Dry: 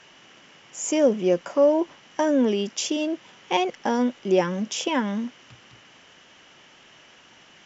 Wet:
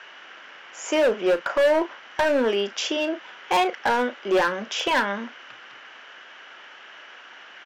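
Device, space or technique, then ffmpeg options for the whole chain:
megaphone: -filter_complex "[0:a]highpass=490,lowpass=3500,equalizer=frequency=1500:width_type=o:width=0.51:gain=8,asoftclip=type=hard:threshold=-22.5dB,asplit=2[link_01][link_02];[link_02]adelay=35,volume=-12dB[link_03];[link_01][link_03]amix=inputs=2:normalize=0,volume=6dB"

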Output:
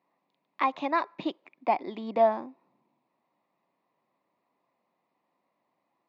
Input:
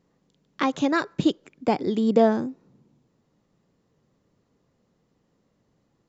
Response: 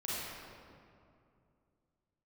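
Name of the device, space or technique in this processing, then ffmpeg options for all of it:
phone earpiece: -af "highpass=420,equalizer=frequency=450:width_type=q:width=4:gain=-10,equalizer=frequency=700:width_type=q:width=4:gain=5,equalizer=frequency=1000:width_type=q:width=4:gain=9,equalizer=frequency=1500:width_type=q:width=4:gain=-9,equalizer=frequency=2100:width_type=q:width=4:gain=4,equalizer=frequency=3100:width_type=q:width=4:gain=-7,lowpass=frequency=3800:width=0.5412,lowpass=frequency=3800:width=1.3066,equalizer=frequency=2500:width=5.2:gain=4,volume=-3.5dB"

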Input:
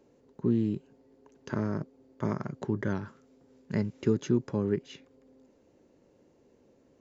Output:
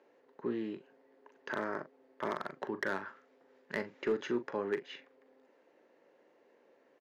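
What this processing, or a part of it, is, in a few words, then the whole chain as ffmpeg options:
megaphone: -filter_complex "[0:a]highpass=560,lowpass=3000,equalizer=frequency=1800:width_type=o:width=0.42:gain=6,asoftclip=type=hard:threshold=-28dB,asplit=2[link_01][link_02];[link_02]adelay=41,volume=-11.5dB[link_03];[link_01][link_03]amix=inputs=2:normalize=0,volume=3dB"

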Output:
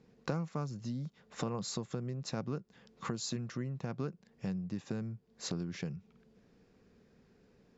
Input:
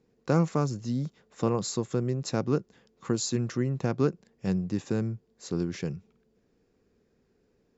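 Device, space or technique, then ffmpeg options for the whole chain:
jukebox: -af "lowpass=6000,lowshelf=frequency=250:width_type=q:width=1.5:gain=9.5,acompressor=threshold=-35dB:ratio=4,bass=frequency=250:gain=-13,treble=frequency=4000:gain=0,volume=6dB"

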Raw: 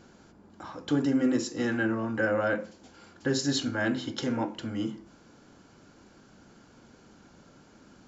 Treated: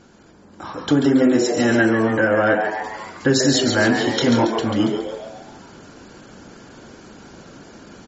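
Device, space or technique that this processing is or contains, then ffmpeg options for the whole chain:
low-bitrate web radio: -filter_complex "[0:a]asettb=1/sr,asplit=3[link_01][link_02][link_03];[link_01]atrim=end=3.874[link_04];[link_02]atrim=start=3.87:end=4.46,asetpts=PTS-STARTPTS,afade=type=in:duration=0.004:curve=qsin,afade=type=out:start_time=0.586:duration=0.004:curve=qsin,asplit=2[link_05][link_06];[link_06]adelay=25,volume=-5.5dB[link_07];[link_05][link_07]amix=inputs=2:normalize=0,atrim=end_sample=26019[link_08];[link_03]atrim=start=4.456[link_09];[link_04][link_08]acrossfade=duration=0.004:curve1=hsin:curve2=qsin[link_10];[link_10][link_09]acrossfade=duration=0.004:curve1=qsin:curve2=hsin,asplit=7[link_11][link_12][link_13][link_14][link_15][link_16][link_17];[link_12]adelay=139,afreqshift=110,volume=-6.5dB[link_18];[link_13]adelay=278,afreqshift=220,volume=-12.3dB[link_19];[link_14]adelay=417,afreqshift=330,volume=-18.2dB[link_20];[link_15]adelay=556,afreqshift=440,volume=-24dB[link_21];[link_16]adelay=695,afreqshift=550,volume=-29.9dB[link_22];[link_17]adelay=834,afreqshift=660,volume=-35.7dB[link_23];[link_11][link_18][link_19][link_20][link_21][link_22][link_23]amix=inputs=7:normalize=0,dynaudnorm=framelen=120:gausssize=11:maxgain=7.5dB,alimiter=limit=-11dB:level=0:latency=1:release=431,volume=5dB" -ar 48000 -c:a libmp3lame -b:a 32k

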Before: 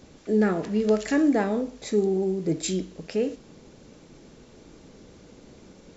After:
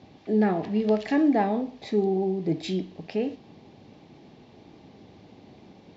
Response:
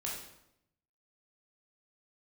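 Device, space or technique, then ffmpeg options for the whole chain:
guitar cabinet: -af "highpass=100,equalizer=frequency=100:width_type=q:width=4:gain=7,equalizer=frequency=500:width_type=q:width=4:gain=-6,equalizer=frequency=770:width_type=q:width=4:gain=8,equalizer=frequency=1400:width_type=q:width=4:gain=-9,lowpass=frequency=4400:width=0.5412,lowpass=frequency=4400:width=1.3066"

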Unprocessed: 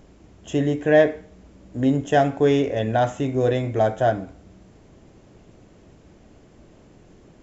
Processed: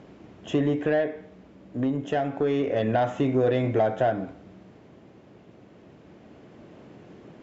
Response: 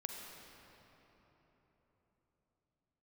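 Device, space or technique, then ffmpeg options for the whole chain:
AM radio: -af "highpass=130,lowpass=3600,acompressor=threshold=-22dB:ratio=5,asoftclip=type=tanh:threshold=-17dB,tremolo=f=0.28:d=0.38,volume=4.5dB"

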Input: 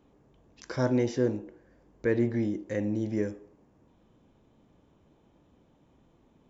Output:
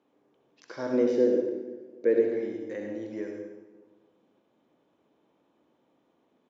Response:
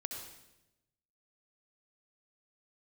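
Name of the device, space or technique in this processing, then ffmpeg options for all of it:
supermarket ceiling speaker: -filter_complex "[0:a]asettb=1/sr,asplit=3[link_01][link_02][link_03];[link_01]atrim=end=0.934[link_04];[link_02]atrim=start=0.93:end=2.2,asetpts=PTS-STARTPTS,afade=type=in:duration=0.004:curve=qsin,afade=type=out:start_time=1.266:duration=0.004:curve=qsin,equalizer=frequency=125:width_type=o:width=1:gain=-4,equalizer=frequency=250:width_type=o:width=1:gain=6,equalizer=frequency=500:width_type=o:width=1:gain=11,equalizer=frequency=1000:width_type=o:width=1:gain=-8[link_05];[link_03]atrim=start=2.196[link_06];[link_04][link_05]acrossfade=duration=0.004:curve1=hsin:curve2=qsin[link_07];[link_07][link_06]acrossfade=duration=0.004:curve1=qsin:curve2=hsin,highpass=300,lowpass=5300[link_08];[1:a]atrim=start_sample=2205[link_09];[link_08][link_09]afir=irnorm=-1:irlink=0,asplit=2[link_10][link_11];[link_11]adelay=252,lowpass=frequency=990:poles=1,volume=-16.5dB,asplit=2[link_12][link_13];[link_13]adelay=252,lowpass=frequency=990:poles=1,volume=0.43,asplit=2[link_14][link_15];[link_15]adelay=252,lowpass=frequency=990:poles=1,volume=0.43,asplit=2[link_16][link_17];[link_17]adelay=252,lowpass=frequency=990:poles=1,volume=0.43[link_18];[link_10][link_12][link_14][link_16][link_18]amix=inputs=5:normalize=0,volume=-2dB"

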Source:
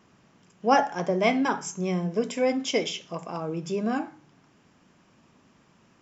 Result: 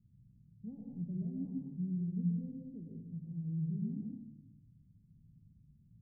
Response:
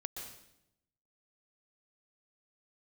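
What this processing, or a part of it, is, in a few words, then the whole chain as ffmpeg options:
club heard from the street: -filter_complex "[0:a]asplit=3[link_01][link_02][link_03];[link_01]afade=type=out:start_time=1.18:duration=0.02[link_04];[link_02]equalizer=frequency=910:width_type=o:width=2.6:gain=11,afade=type=in:start_time=1.18:duration=0.02,afade=type=out:start_time=1.75:duration=0.02[link_05];[link_03]afade=type=in:start_time=1.75:duration=0.02[link_06];[link_04][link_05][link_06]amix=inputs=3:normalize=0,alimiter=limit=-12.5dB:level=0:latency=1:release=105,lowpass=frequency=140:width=0.5412,lowpass=frequency=140:width=1.3066[link_07];[1:a]atrim=start_sample=2205[link_08];[link_07][link_08]afir=irnorm=-1:irlink=0,volume=7dB"

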